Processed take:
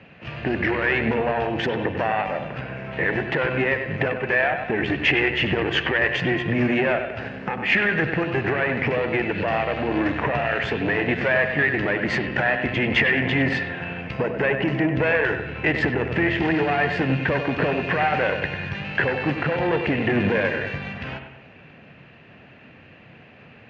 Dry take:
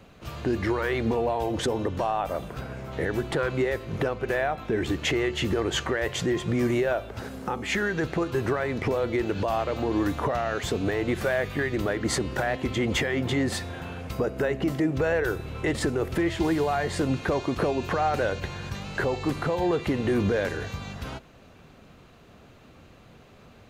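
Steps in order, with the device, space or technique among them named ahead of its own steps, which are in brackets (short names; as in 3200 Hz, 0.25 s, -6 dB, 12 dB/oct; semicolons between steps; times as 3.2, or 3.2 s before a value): analogue delay pedal into a guitar amplifier (analogue delay 97 ms, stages 2048, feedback 47%, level -8 dB; tube stage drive 19 dB, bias 0.7; speaker cabinet 100–4000 Hz, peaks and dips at 140 Hz +4 dB, 380 Hz -3 dB, 1200 Hz -5 dB, 1800 Hz +9 dB, 2600 Hz +9 dB, 3800 Hz -7 dB); gain +7 dB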